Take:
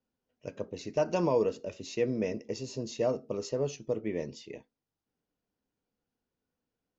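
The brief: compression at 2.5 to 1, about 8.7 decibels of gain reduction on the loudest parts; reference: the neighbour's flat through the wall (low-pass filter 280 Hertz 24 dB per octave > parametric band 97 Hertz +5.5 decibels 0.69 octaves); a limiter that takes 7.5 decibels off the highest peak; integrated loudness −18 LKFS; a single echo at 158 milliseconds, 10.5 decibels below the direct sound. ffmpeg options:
ffmpeg -i in.wav -af "acompressor=threshold=-36dB:ratio=2.5,alimiter=level_in=5dB:limit=-24dB:level=0:latency=1,volume=-5dB,lowpass=frequency=280:width=0.5412,lowpass=frequency=280:width=1.3066,equalizer=frequency=97:width_type=o:width=0.69:gain=5.5,aecho=1:1:158:0.299,volume=29dB" out.wav

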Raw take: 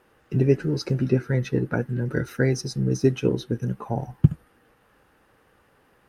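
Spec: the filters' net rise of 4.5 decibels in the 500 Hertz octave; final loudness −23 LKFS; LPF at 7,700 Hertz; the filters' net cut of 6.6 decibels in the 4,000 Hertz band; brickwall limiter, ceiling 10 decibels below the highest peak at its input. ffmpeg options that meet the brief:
ffmpeg -i in.wav -af "lowpass=7700,equalizer=frequency=500:width_type=o:gain=6,equalizer=frequency=4000:width_type=o:gain=-8.5,volume=2.5dB,alimiter=limit=-9.5dB:level=0:latency=1" out.wav

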